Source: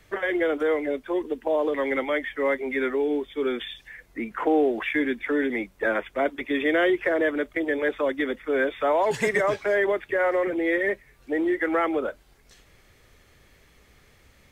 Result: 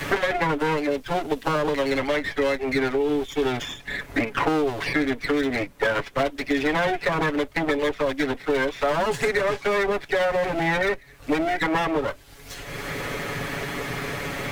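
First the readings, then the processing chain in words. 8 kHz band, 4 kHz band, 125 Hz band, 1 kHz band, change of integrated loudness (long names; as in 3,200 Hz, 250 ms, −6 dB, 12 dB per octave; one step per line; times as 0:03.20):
can't be measured, +7.5 dB, +14.5 dB, +4.0 dB, +0.5 dB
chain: lower of the sound and its delayed copy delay 7.1 ms
multiband upward and downward compressor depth 100%
level +2 dB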